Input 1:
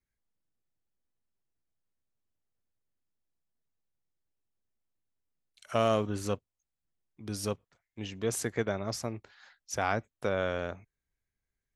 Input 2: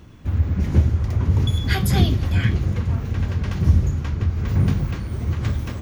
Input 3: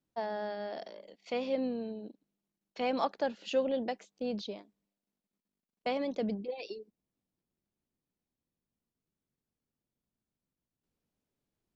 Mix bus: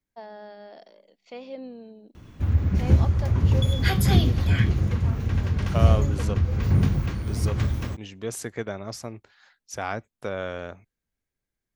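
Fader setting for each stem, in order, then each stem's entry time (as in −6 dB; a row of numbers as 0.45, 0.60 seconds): −0.5, −1.5, −5.5 decibels; 0.00, 2.15, 0.00 seconds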